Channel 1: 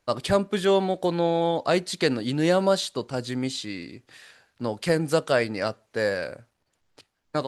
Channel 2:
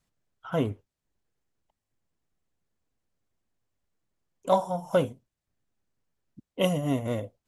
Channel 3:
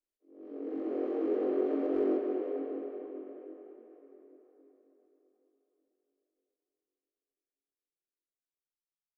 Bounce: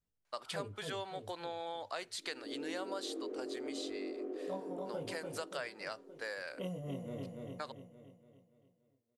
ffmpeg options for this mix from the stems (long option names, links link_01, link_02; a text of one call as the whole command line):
ffmpeg -i stem1.wav -i stem2.wav -i stem3.wav -filter_complex "[0:a]highpass=870,adelay=250,volume=-7.5dB[link_01];[1:a]equalizer=frequency=450:width=5.5:gain=9,flanger=delay=18.5:depth=3.7:speed=0.37,volume=-13.5dB,asplit=2[link_02][link_03];[link_03]volume=-5.5dB[link_04];[2:a]acompressor=threshold=-34dB:ratio=6,adelay=1950,volume=-3.5dB[link_05];[link_04]aecho=0:1:287|574|861|1148|1435|1722|2009:1|0.5|0.25|0.125|0.0625|0.0312|0.0156[link_06];[link_01][link_02][link_05][link_06]amix=inputs=4:normalize=0,lowshelf=frequency=340:gain=7,acompressor=threshold=-39dB:ratio=3" out.wav